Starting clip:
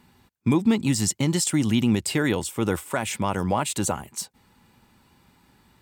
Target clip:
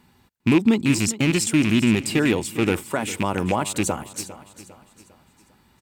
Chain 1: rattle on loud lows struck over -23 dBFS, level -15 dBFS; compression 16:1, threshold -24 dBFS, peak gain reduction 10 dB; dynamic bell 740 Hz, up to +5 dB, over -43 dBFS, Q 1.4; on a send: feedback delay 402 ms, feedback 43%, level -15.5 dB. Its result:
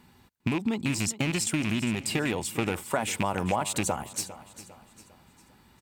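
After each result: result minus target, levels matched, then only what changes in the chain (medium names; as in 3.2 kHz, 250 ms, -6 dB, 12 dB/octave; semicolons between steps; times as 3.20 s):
compression: peak gain reduction +10 dB; 1 kHz band +5.0 dB
remove: compression 16:1, threshold -24 dBFS, peak gain reduction 10 dB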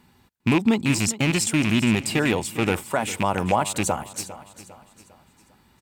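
1 kHz band +4.5 dB
change: dynamic bell 330 Hz, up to +5 dB, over -43 dBFS, Q 1.4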